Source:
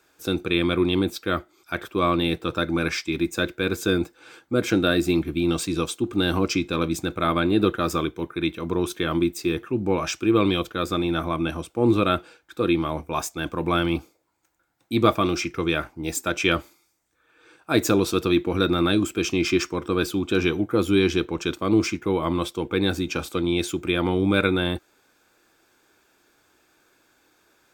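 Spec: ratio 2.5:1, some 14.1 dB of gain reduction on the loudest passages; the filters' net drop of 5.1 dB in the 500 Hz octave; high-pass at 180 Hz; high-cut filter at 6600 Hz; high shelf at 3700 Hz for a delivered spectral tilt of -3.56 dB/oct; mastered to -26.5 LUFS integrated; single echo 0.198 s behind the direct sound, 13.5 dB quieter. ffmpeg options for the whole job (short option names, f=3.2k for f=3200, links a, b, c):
-af "highpass=180,lowpass=6.6k,equalizer=f=500:t=o:g=-7.5,highshelf=f=3.7k:g=6.5,acompressor=threshold=-38dB:ratio=2.5,aecho=1:1:198:0.211,volume=10dB"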